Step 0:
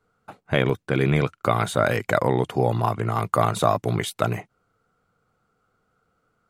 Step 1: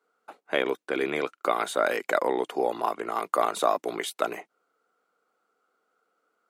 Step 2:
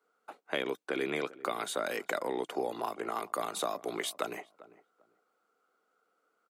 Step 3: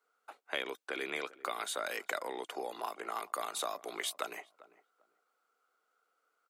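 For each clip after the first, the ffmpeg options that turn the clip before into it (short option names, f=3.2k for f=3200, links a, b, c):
-af "highpass=f=300:w=0.5412,highpass=f=300:w=1.3066,volume=-3dB"
-filter_complex "[0:a]acrossover=split=250|3000[a][b][c];[b]acompressor=threshold=-29dB:ratio=6[d];[a][d][c]amix=inputs=3:normalize=0,asplit=2[e][f];[f]adelay=396,lowpass=f=1k:p=1,volume=-17.5dB,asplit=2[g][h];[h]adelay=396,lowpass=f=1k:p=1,volume=0.24[i];[e][g][i]amix=inputs=3:normalize=0,volume=-2dB"
-af "highpass=f=920:p=1"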